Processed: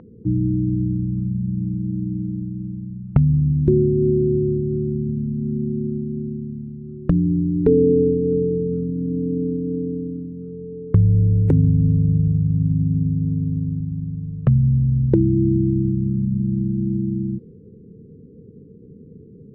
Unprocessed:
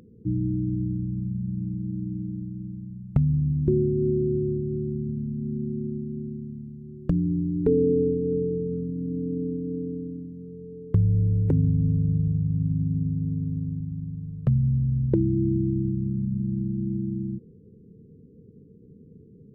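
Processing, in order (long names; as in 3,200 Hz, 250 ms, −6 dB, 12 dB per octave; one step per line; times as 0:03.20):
low-pass that shuts in the quiet parts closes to 1,100 Hz, open at −18.5 dBFS
one half of a high-frequency compander encoder only
level +6 dB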